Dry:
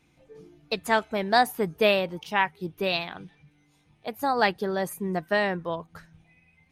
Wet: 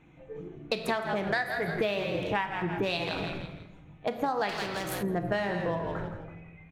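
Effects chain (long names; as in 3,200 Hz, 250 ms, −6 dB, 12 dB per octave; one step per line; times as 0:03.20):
adaptive Wiener filter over 9 samples
0:01.27–0:01.68: octave-band graphic EQ 250/1,000/2,000/4,000 Hz −9/−7/+12/−4 dB
echo with shifted repeats 164 ms, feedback 34%, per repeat −63 Hz, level −10 dB
convolution reverb RT60 1.0 s, pre-delay 6 ms, DRR 6 dB
downward compressor 12 to 1, threshold −33 dBFS, peak gain reduction 19 dB
high-shelf EQ 9,300 Hz −6 dB
0:04.49–0:05.03: every bin compressed towards the loudest bin 2 to 1
level +7 dB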